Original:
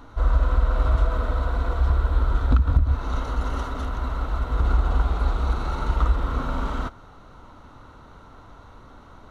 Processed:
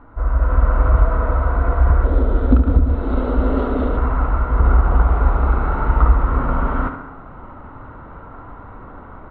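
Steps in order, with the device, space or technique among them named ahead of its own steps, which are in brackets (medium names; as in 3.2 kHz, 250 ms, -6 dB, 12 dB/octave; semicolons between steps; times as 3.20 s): 2.04–3.97 s: graphic EQ 125/250/500/1000/2000/4000 Hz -7/+8/+7/-6/-5/+11 dB; tape echo 70 ms, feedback 65%, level -6.5 dB, low-pass 3.5 kHz; action camera in a waterproof case (low-pass 2 kHz 24 dB/octave; level rider gain up to 9 dB; AAC 48 kbps 32 kHz)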